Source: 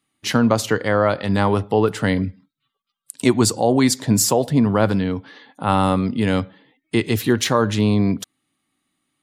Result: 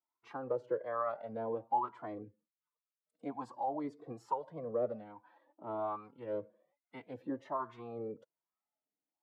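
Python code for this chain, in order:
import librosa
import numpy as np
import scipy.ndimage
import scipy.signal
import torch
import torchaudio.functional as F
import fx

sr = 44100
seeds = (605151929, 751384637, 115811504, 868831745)

y = fx.high_shelf(x, sr, hz=2900.0, db=-9.5)
y = fx.pitch_keep_formants(y, sr, semitones=2.0)
y = fx.wah_lfo(y, sr, hz=1.2, low_hz=450.0, high_hz=1000.0, q=3.9)
y = fx.comb_cascade(y, sr, direction='rising', hz=0.53)
y = y * 10.0 ** (-4.0 / 20.0)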